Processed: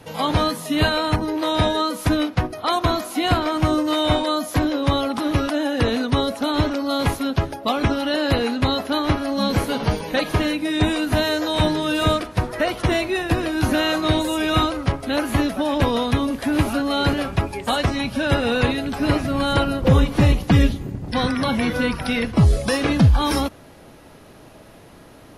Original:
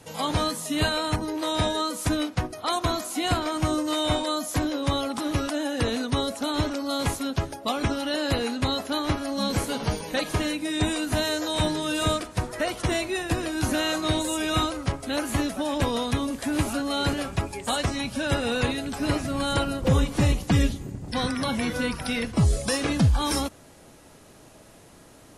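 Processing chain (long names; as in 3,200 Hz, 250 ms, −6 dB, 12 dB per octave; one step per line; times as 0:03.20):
parametric band 7,800 Hz −12 dB 0.95 octaves
level +6 dB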